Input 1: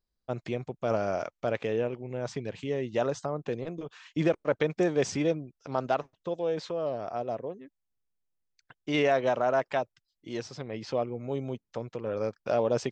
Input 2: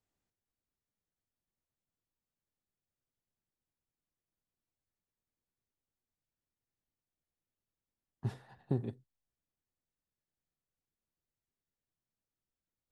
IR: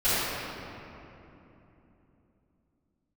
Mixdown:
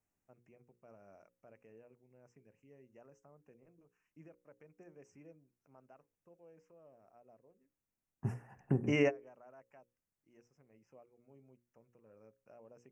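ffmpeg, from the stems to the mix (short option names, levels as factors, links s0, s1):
-filter_complex "[0:a]alimiter=limit=0.133:level=0:latency=1:release=148,volume=0.841[s0];[1:a]volume=0.944,asplit=2[s1][s2];[s2]apad=whole_len=569750[s3];[s0][s3]sidechaingate=range=0.0355:threshold=0.001:ratio=16:detection=peak[s4];[s4][s1]amix=inputs=2:normalize=0,asuperstop=centerf=3900:order=8:qfactor=1.5,equalizer=f=200:t=o:w=1.5:g=3.5,bandreject=f=60:t=h:w=6,bandreject=f=120:t=h:w=6,bandreject=f=180:t=h:w=6,bandreject=f=240:t=h:w=6,bandreject=f=300:t=h:w=6,bandreject=f=360:t=h:w=6,bandreject=f=420:t=h:w=6,bandreject=f=480:t=h:w=6,bandreject=f=540:t=h:w=6"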